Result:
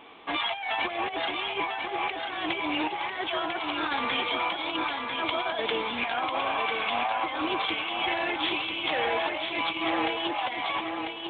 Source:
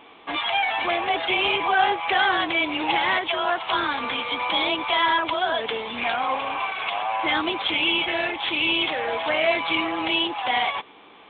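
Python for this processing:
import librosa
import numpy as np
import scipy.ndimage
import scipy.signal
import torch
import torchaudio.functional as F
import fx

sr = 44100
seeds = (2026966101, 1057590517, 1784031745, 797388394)

p1 = fx.over_compress(x, sr, threshold_db=-26.0, ratio=-0.5)
p2 = p1 + fx.echo_feedback(p1, sr, ms=996, feedback_pct=30, wet_db=-5.0, dry=0)
y = p2 * librosa.db_to_amplitude(-4.0)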